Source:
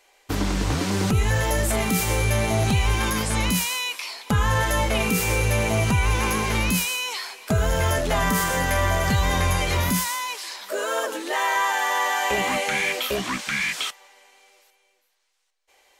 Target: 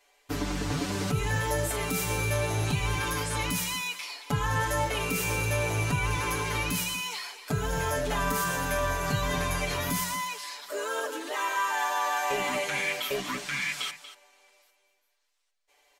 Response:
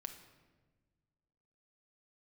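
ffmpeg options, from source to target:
-af "bandreject=f=60:t=h:w=6,bandreject=f=120:t=h:w=6,bandreject=f=180:t=h:w=6,aecho=1:1:6.9:0.9,aecho=1:1:236:0.211,volume=-8.5dB"

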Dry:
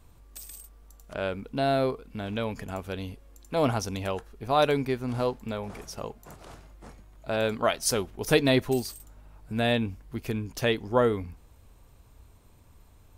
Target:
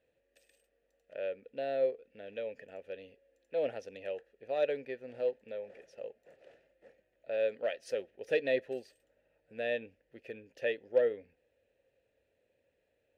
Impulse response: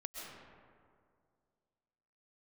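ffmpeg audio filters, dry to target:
-filter_complex "[0:a]aeval=exprs='0.376*(cos(1*acos(clip(val(0)/0.376,-1,1)))-cos(1*PI/2))+0.0473*(cos(5*acos(clip(val(0)/0.376,-1,1)))-cos(5*PI/2))+0.0335*(cos(7*acos(clip(val(0)/0.376,-1,1)))-cos(7*PI/2))':c=same,asplit=3[a][b][c];[a]bandpass=f=530:t=q:w=8,volume=0dB[d];[b]bandpass=f=1.84k:t=q:w=8,volume=-6dB[e];[c]bandpass=f=2.48k:t=q:w=8,volume=-9dB[f];[d][e][f]amix=inputs=3:normalize=0"

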